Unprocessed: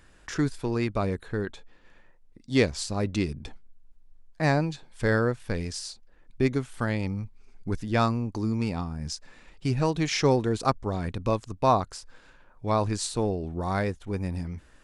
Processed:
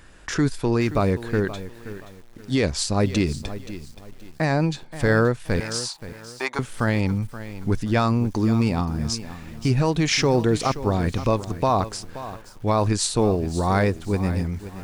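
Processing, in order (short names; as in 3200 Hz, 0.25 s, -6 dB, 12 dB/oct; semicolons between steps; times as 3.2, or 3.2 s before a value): 5.6–6.59 resonant high-pass 910 Hz, resonance Q 4.9; limiter -18 dBFS, peak gain reduction 9.5 dB; lo-fi delay 0.526 s, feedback 35%, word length 8-bit, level -13.5 dB; gain +7.5 dB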